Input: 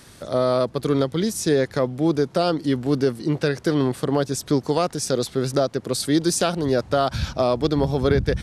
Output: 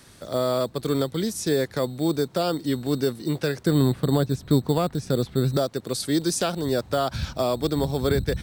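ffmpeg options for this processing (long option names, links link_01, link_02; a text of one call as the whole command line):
ffmpeg -i in.wav -filter_complex "[0:a]asettb=1/sr,asplit=3[link_01][link_02][link_03];[link_01]atrim=end=3.664[link_04];[link_02]atrim=start=3.66:end=5.57,asetpts=PTS-STARTPTS,afade=type=in:duration=0.004:curve=qsin,afade=type=out:start_time=1.906:duration=0.004:curve=qsin,bass=frequency=250:gain=9,treble=frequency=4000:gain=-15[link_05];[link_03]atrim=start=5.566[link_06];[link_04][link_05]acrossfade=duration=0.004:curve1=hsin:curve2=qsin[link_07];[link_07][link_06]acrossfade=duration=0.004:curve1=qsin:curve2=hsin,acrossover=split=610|880[link_08][link_09][link_10];[link_08]acrusher=samples=11:mix=1:aa=0.000001[link_11];[link_11][link_09][link_10]amix=inputs=3:normalize=0,volume=-3.5dB" out.wav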